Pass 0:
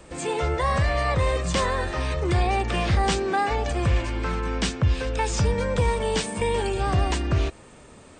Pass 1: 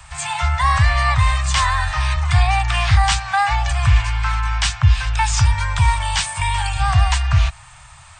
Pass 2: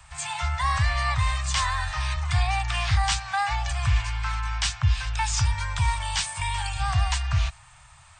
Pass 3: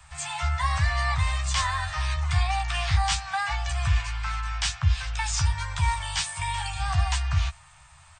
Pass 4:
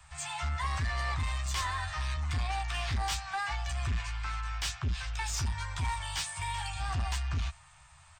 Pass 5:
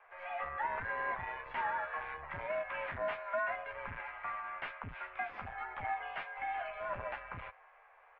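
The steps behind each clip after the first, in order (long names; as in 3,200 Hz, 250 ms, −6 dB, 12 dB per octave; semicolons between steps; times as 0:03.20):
inverse Chebyshev band-stop filter 220–470 Hz, stop band 50 dB; level +8.5 dB
dynamic equaliser 5,600 Hz, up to +4 dB, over −37 dBFS, Q 0.74; level −8.5 dB
double-tracking delay 13 ms −6 dB; level −2 dB
soft clipping −22 dBFS, distortion −12 dB; level −4.5 dB
single-sideband voice off tune −150 Hz 210–2,400 Hz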